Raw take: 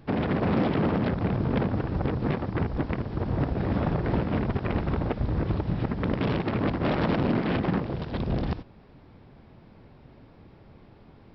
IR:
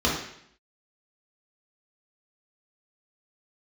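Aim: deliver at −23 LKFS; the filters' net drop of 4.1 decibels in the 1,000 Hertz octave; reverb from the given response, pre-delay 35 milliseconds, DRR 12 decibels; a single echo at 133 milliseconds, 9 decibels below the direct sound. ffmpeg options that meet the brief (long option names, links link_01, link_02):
-filter_complex "[0:a]equalizer=frequency=1000:width_type=o:gain=-5.5,aecho=1:1:133:0.355,asplit=2[link_01][link_02];[1:a]atrim=start_sample=2205,adelay=35[link_03];[link_02][link_03]afir=irnorm=-1:irlink=0,volume=-27dB[link_04];[link_01][link_04]amix=inputs=2:normalize=0,volume=4dB"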